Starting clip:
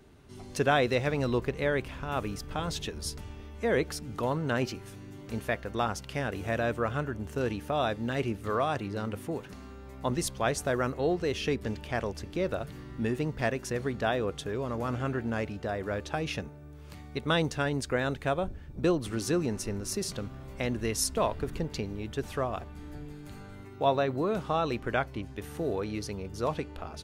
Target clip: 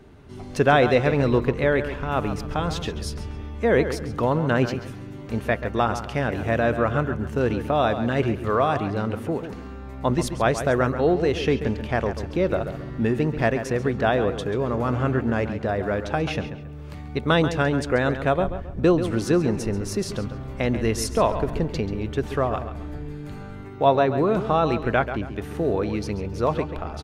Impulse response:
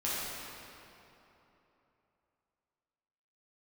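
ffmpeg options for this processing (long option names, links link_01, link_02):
-filter_complex "[0:a]highshelf=frequency=4000:gain=-10.5,asplit=2[link_01][link_02];[link_02]adelay=136,lowpass=frequency=4400:poles=1,volume=-10dB,asplit=2[link_03][link_04];[link_04]adelay=136,lowpass=frequency=4400:poles=1,volume=0.34,asplit=2[link_05][link_06];[link_06]adelay=136,lowpass=frequency=4400:poles=1,volume=0.34,asplit=2[link_07][link_08];[link_08]adelay=136,lowpass=frequency=4400:poles=1,volume=0.34[link_09];[link_03][link_05][link_07][link_09]amix=inputs=4:normalize=0[link_10];[link_01][link_10]amix=inputs=2:normalize=0,volume=8dB"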